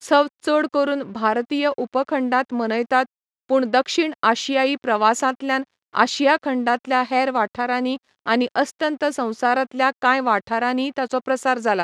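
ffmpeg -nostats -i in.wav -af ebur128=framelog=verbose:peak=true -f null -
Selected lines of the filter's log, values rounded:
Integrated loudness:
  I:         -20.7 LUFS
  Threshold: -30.7 LUFS
Loudness range:
  LRA:         1.7 LU
  Threshold: -40.7 LUFS
  LRA low:   -21.5 LUFS
  LRA high:  -19.8 LUFS
True peak:
  Peak:       -1.2 dBFS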